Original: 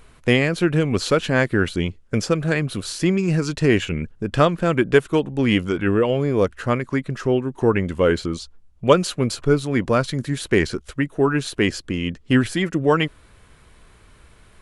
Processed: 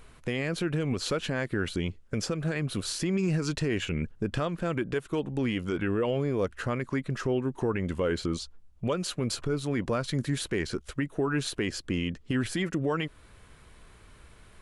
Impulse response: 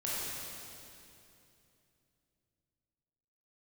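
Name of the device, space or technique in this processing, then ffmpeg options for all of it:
stacked limiters: -af "alimiter=limit=-8dB:level=0:latency=1:release=418,alimiter=limit=-12.5dB:level=0:latency=1:release=165,alimiter=limit=-16dB:level=0:latency=1:release=58,volume=-3dB"

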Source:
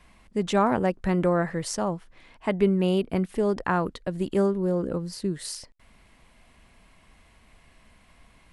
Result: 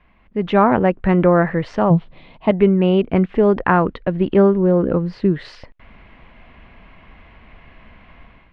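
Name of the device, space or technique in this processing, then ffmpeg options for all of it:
action camera in a waterproof case: -filter_complex "[0:a]asettb=1/sr,asplit=3[a][b][c];[a]atrim=end=1.904[d];[b]atrim=start=1.9:end=2.51,asetpts=PTS-STARTPTS,afade=t=in:d=0.004:c=qsin,afade=t=out:st=0.606:d=0.004:c=qsin,equalizer=f=160:t=o:w=0.67:g=11,equalizer=f=630:t=o:w=0.67:g=4,equalizer=f=1.6k:t=o:w=0.67:g=-11,equalizer=f=4k:t=o:w=0.67:g=10[e];[c]atrim=start=2.506[f];[d][e]acrossfade=d=0.004:c1=hsin:c2=qsin[g];[g][f]acrossfade=d=0.004:c1=qsin:c2=hsin,lowpass=f=2.9k:w=0.5412,lowpass=f=2.9k:w=1.3066,dynaudnorm=f=160:g=5:m=12dB" -ar 44100 -c:a aac -b:a 96k

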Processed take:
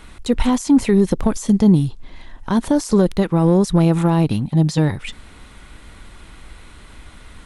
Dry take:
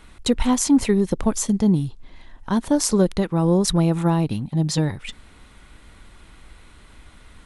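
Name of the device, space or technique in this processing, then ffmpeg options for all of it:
de-esser from a sidechain: -filter_complex "[0:a]asplit=2[a][b];[b]highpass=f=4.2k:p=1,apad=whole_len=328766[c];[a][c]sidechaincompress=threshold=-36dB:ratio=4:attack=1.3:release=34,volume=6dB"

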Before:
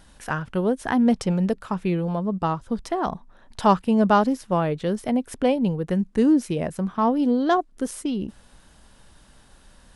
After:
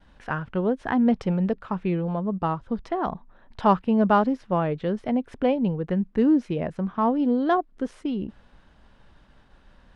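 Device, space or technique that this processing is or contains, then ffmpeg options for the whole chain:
hearing-loss simulation: -af "lowpass=2.9k,agate=range=-33dB:threshold=-51dB:ratio=3:detection=peak,volume=-1.5dB"

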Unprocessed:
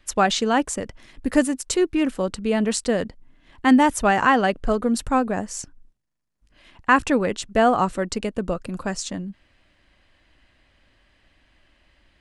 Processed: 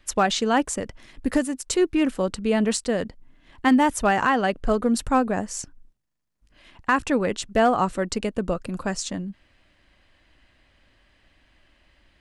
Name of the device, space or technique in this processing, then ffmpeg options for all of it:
limiter into clipper: -af "alimiter=limit=-9.5dB:level=0:latency=1:release=460,asoftclip=type=hard:threshold=-11dB"

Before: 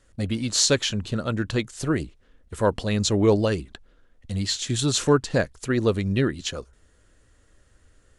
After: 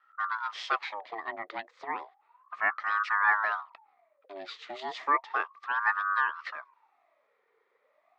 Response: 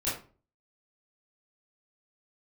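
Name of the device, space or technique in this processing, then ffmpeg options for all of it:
voice changer toy: -af "aeval=exprs='val(0)*sin(2*PI*900*n/s+900*0.5/0.33*sin(2*PI*0.33*n/s))':c=same,highpass=520,equalizer=f=530:t=q:w=4:g=-5,equalizer=f=1.2k:t=q:w=4:g=8,equalizer=f=1.9k:t=q:w=4:g=9,equalizer=f=2.9k:t=q:w=4:g=-5,lowpass=f=3.6k:w=0.5412,lowpass=f=3.6k:w=1.3066,volume=-8dB"

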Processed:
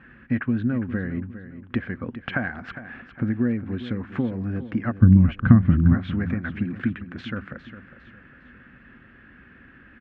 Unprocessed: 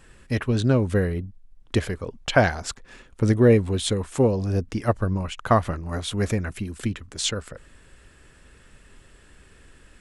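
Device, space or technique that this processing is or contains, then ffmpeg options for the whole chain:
bass amplifier: -filter_complex "[0:a]acompressor=threshold=-28dB:ratio=6,highpass=81,equalizer=f=83:t=q:w=4:g=-5,equalizer=f=240:t=q:w=4:g=9,equalizer=f=430:t=q:w=4:g=-10,equalizer=f=610:t=q:w=4:g=-6,equalizer=f=930:t=q:w=4:g=-7,equalizer=f=1.6k:t=q:w=4:g=6,lowpass=f=2.3k:w=0.5412,lowpass=f=2.3k:w=1.3066,asplit=3[a][b][c];[a]afade=t=out:st=5.01:d=0.02[d];[b]asubboost=boost=11:cutoff=210,afade=t=in:st=5.01:d=0.02,afade=t=out:st=5.93:d=0.02[e];[c]afade=t=in:st=5.93:d=0.02[f];[d][e][f]amix=inputs=3:normalize=0,aecho=1:1:406|812|1218|1624:0.224|0.0828|0.0306|0.0113,volume=4.5dB"

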